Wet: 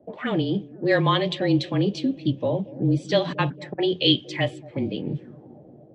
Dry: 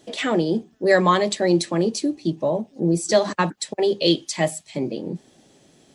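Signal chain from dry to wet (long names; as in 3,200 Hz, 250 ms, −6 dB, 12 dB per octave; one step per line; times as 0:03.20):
high-pass filter 100 Hz
low-shelf EQ 290 Hz +9 dB
automatic gain control gain up to 3.5 dB
frequency shifter −28 Hz
on a send: bucket-brigade delay 227 ms, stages 1,024, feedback 68%, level −19 dB
on the sum: envelope-controlled low-pass 610–3,200 Hz up, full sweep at −16.5 dBFS
level −7.5 dB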